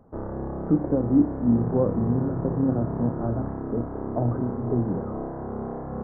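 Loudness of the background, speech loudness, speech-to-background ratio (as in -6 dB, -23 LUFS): -32.0 LUFS, -26.0 LUFS, 6.0 dB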